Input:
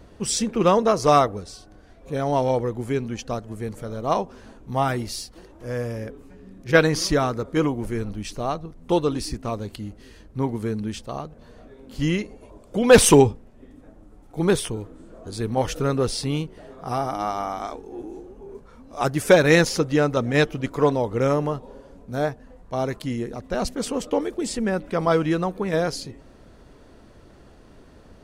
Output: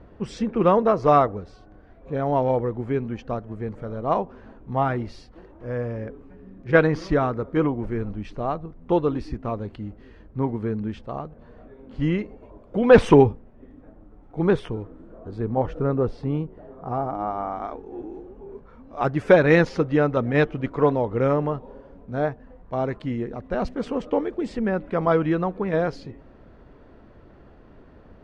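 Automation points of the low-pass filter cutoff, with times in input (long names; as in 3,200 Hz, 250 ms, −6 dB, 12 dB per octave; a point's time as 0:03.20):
0:14.78 1,900 Hz
0:15.63 1,100 Hz
0:17.26 1,100 Hz
0:17.95 2,200 Hz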